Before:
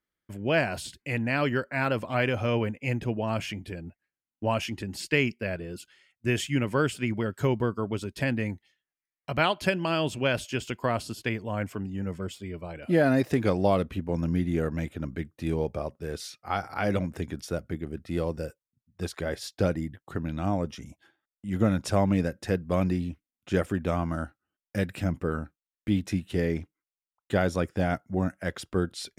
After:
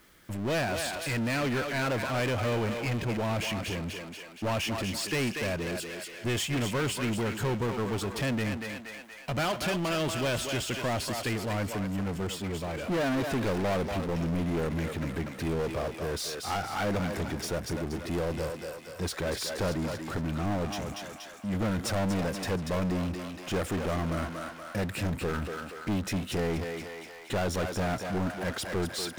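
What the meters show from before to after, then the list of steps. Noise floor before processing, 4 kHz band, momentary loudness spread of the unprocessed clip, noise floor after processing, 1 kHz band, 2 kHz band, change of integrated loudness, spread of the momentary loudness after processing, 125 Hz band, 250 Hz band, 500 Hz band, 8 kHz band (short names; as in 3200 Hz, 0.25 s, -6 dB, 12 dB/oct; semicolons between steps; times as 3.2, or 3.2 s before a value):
under -85 dBFS, +2.5 dB, 11 LU, -45 dBFS, -1.5 dB, -1.5 dB, -2.0 dB, 7 LU, -2.0 dB, -2.5 dB, -2.5 dB, +5.5 dB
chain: overloaded stage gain 24.5 dB; thinning echo 0.238 s, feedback 38%, high-pass 590 Hz, level -6.5 dB; power-law curve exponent 0.5; gain -4 dB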